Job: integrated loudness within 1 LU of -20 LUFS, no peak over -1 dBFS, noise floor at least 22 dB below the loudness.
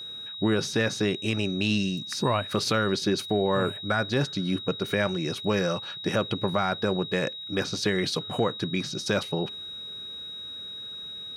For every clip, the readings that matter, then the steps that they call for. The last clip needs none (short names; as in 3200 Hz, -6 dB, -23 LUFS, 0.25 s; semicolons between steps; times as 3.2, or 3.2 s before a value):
steady tone 3800 Hz; tone level -36 dBFS; loudness -27.5 LUFS; peak -12.5 dBFS; loudness target -20.0 LUFS
-> notch 3800 Hz, Q 30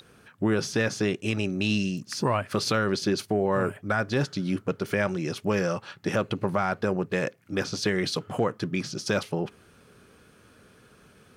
steady tone none; loudness -27.5 LUFS; peak -12.5 dBFS; loudness target -20.0 LUFS
-> gain +7.5 dB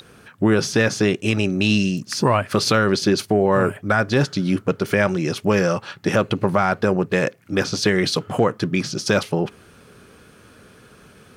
loudness -20.0 LUFS; peak -5.0 dBFS; noise floor -50 dBFS